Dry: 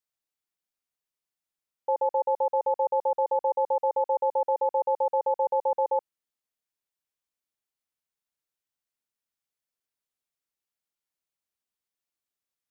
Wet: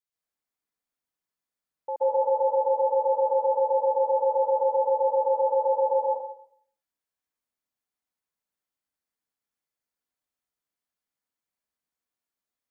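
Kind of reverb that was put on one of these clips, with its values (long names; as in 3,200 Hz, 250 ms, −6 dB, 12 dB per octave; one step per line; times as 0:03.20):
dense smooth reverb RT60 0.61 s, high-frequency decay 0.3×, pre-delay 115 ms, DRR −6.5 dB
level −6 dB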